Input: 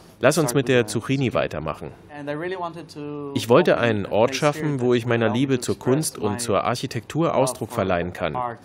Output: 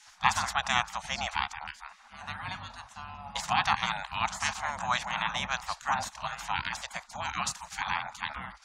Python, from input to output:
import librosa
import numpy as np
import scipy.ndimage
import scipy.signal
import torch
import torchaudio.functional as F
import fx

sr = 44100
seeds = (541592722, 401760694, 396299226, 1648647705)

y = fx.spec_gate(x, sr, threshold_db=-20, keep='weak')
y = fx.curve_eq(y, sr, hz=(190.0, 420.0, 800.0, 2900.0, 7000.0, 13000.0), db=(0, -26, 2, -9, -4, -26))
y = y * 10.0 ** (8.5 / 20.0)